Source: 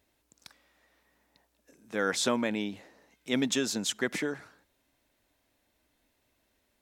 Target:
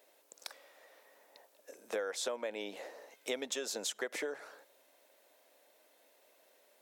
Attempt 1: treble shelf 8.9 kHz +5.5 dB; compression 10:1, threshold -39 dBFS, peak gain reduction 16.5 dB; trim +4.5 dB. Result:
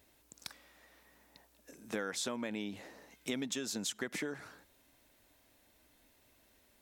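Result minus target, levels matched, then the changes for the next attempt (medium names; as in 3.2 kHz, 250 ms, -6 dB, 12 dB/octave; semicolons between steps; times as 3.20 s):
500 Hz band -4.0 dB
add first: resonant high-pass 520 Hz, resonance Q 2.7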